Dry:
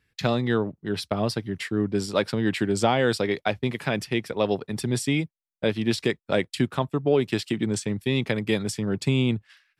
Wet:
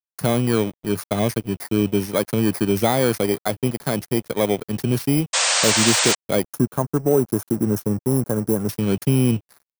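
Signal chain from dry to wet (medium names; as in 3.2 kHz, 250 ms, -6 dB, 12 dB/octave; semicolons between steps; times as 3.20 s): bit-reversed sample order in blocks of 16 samples; in parallel at +2 dB: peak limiter -16.5 dBFS, peak gain reduction 9.5 dB; on the sum: treble shelf 2.6 kHz -5 dB; reverse; upward compressor, threshold -30 dBFS; reverse; spectral selection erased 6.44–8.69 s, 1.7–5.2 kHz; crossover distortion -36 dBFS; painted sound noise, 5.33–6.15 s, 470–8900 Hz -19 dBFS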